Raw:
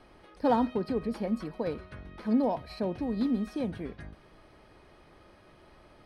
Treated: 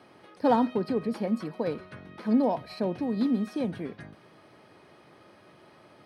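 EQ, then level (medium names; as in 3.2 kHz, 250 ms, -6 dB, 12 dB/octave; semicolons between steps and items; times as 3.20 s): high-pass 110 Hz 24 dB/octave; +2.5 dB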